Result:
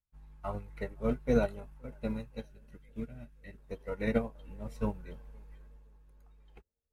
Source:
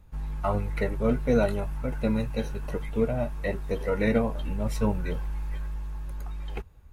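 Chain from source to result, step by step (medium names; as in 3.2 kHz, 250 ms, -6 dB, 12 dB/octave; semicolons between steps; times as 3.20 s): 2.45–3.58 s: high-order bell 700 Hz -11 dB; band-passed feedback delay 520 ms, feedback 66%, band-pass 420 Hz, level -17.5 dB; upward expansion 2.5:1, over -44 dBFS; trim -2.5 dB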